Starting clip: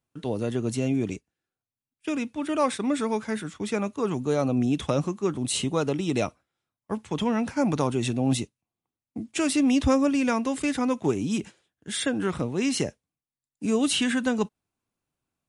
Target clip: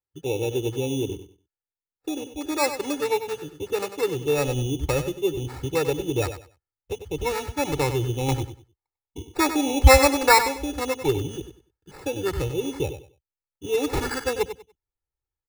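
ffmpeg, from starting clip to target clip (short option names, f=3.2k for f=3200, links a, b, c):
-filter_complex "[0:a]asubboost=boost=9.5:cutoff=62,afwtdn=0.0316,asettb=1/sr,asplit=3[a][b][c];[a]atrim=end=8.284[d];[b]atrim=start=8.28:end=10.41,asetpts=PTS-STARTPTS,afade=t=in:d=0.004:c=qsin,afade=t=out:st=2.126:d=0.004:c=qsin,equalizer=f=950:t=o:w=1.5:g=14[e];[c]atrim=start=10.406[f];[d][e]acrossfade=d=0.004:c1=hsin:c2=qsin[g];[g][f]acrossfade=d=0.004:c1=qsin:c2=hsin,acrusher=samples=14:mix=1:aa=0.000001,aecho=1:1:2.3:0.9,aecho=1:1:96|192|288:0.299|0.0687|0.0158"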